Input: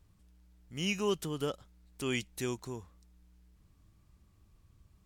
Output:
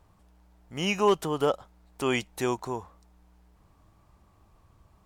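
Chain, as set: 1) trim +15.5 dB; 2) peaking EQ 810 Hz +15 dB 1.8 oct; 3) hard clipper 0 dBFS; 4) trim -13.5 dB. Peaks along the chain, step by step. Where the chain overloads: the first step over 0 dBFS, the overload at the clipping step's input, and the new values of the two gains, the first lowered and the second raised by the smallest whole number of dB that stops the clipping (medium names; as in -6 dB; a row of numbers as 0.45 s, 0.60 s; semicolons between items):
-4.0 dBFS, +3.0 dBFS, 0.0 dBFS, -13.5 dBFS; step 2, 3.0 dB; step 1 +12.5 dB, step 4 -10.5 dB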